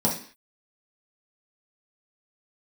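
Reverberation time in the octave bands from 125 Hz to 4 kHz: 0.35 s, 0.45 s, 0.45 s, 0.45 s, 0.55 s, n/a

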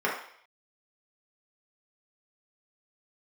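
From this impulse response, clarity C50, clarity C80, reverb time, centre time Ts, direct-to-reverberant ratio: 4.5 dB, 8.5 dB, 0.60 s, 37 ms, -6.0 dB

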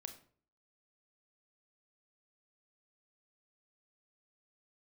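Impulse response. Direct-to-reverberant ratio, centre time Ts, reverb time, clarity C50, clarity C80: 7.0 dB, 10 ms, 0.50 s, 11.5 dB, 15.0 dB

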